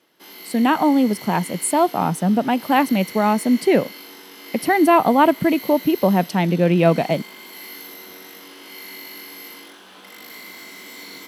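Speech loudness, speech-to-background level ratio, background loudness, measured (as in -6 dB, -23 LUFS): -18.5 LUFS, 18.0 dB, -36.5 LUFS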